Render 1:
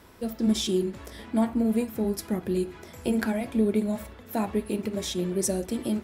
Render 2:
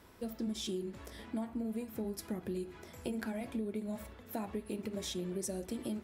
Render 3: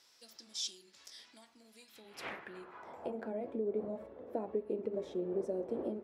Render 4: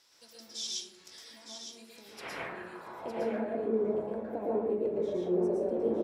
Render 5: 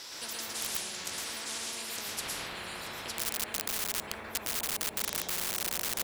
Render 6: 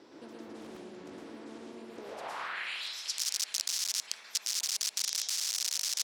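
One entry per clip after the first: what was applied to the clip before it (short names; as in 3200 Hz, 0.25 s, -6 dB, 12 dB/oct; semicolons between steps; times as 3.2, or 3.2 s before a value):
compressor, threshold -28 dBFS, peak gain reduction 9.5 dB; gain -6.5 dB
wind noise 510 Hz -47 dBFS; band-pass sweep 5200 Hz -> 470 Hz, 1.76–3.34; gain +8 dB
echo 0.91 s -8.5 dB; plate-style reverb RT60 0.74 s, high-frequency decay 0.4×, pre-delay 0.1 s, DRR -4.5 dB
in parallel at -5 dB: wrapped overs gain 26.5 dB; on the sum: spectral compressor 10:1; gain +6.5 dB
band-pass sweep 300 Hz -> 5500 Hz, 1.93–3; gain +9 dB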